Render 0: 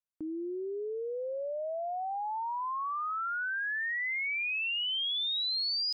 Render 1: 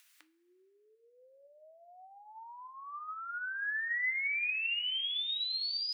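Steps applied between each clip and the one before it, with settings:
upward compression, threshold −35 dBFS
high-pass with resonance 1,900 Hz, resonance Q 1.7
coupled-rooms reverb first 0.27 s, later 2.8 s, from −18 dB, DRR 9 dB
level −5.5 dB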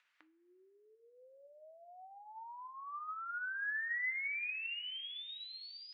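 Bessel low-pass filter 1,500 Hz, order 2
level +1 dB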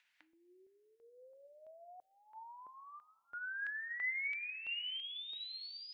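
parametric band 1,200 Hz −11 dB 0.51 octaves
notch on a step sequencer 3 Hz 410–3,300 Hz
level +2.5 dB

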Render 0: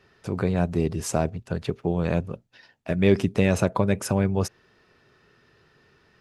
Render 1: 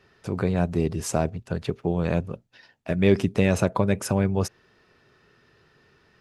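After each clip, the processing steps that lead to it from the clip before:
no processing that can be heard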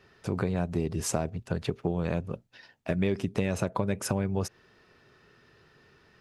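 downward compressor 5 to 1, threshold −24 dBFS, peak gain reduction 11 dB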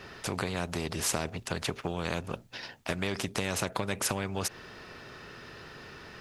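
every bin compressed towards the loudest bin 2 to 1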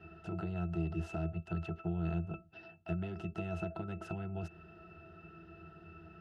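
resonances in every octave E, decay 0.13 s
level +4 dB

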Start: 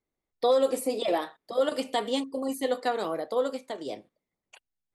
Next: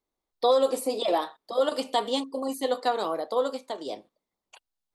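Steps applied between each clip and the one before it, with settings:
graphic EQ with 10 bands 125 Hz −7 dB, 1,000 Hz +6 dB, 2,000 Hz −5 dB, 4,000 Hz +5 dB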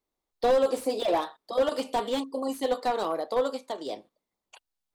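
slew-rate limiting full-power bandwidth 73 Hz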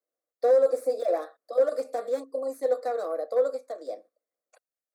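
high-pass with resonance 450 Hz, resonance Q 5.1
phaser with its sweep stopped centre 610 Hz, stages 8
level −5.5 dB

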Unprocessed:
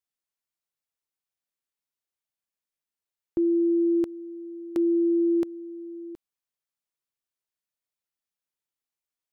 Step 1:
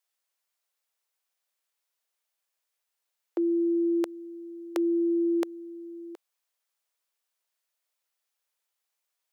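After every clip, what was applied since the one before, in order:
high-pass filter 460 Hz 24 dB per octave
level +8 dB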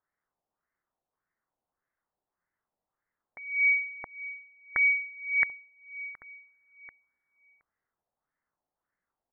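voice inversion scrambler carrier 2,600 Hz
auto-filter low-pass sine 1.7 Hz 740–1,900 Hz
slap from a distant wall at 250 metres, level −16 dB

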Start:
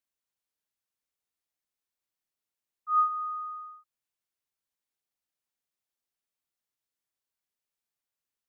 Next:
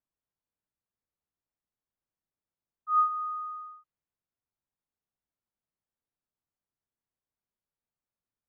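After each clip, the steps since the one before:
low-pass that shuts in the quiet parts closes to 1,300 Hz, open at −31.5 dBFS
bass and treble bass +7 dB, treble +5 dB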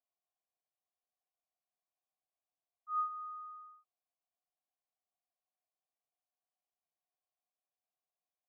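formant filter a
notch comb filter 1,300 Hz
level +8 dB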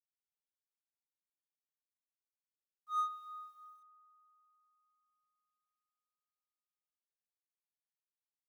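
mu-law and A-law mismatch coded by A
spring reverb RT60 3.8 s, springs 35 ms, chirp 80 ms, DRR 15 dB
level +1.5 dB

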